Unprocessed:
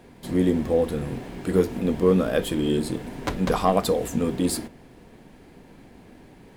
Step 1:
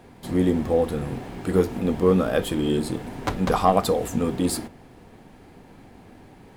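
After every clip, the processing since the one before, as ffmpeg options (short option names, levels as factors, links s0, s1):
-af "equalizer=f=100:t=o:w=0.33:g=6,equalizer=f=800:t=o:w=0.33:g=5,equalizer=f=1250:t=o:w=0.33:g=4"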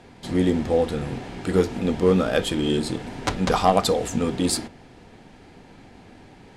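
-af "adynamicsmooth=sensitivity=2:basefreq=5900,equalizer=f=7800:w=0.32:g=10.5,bandreject=f=1100:w=16"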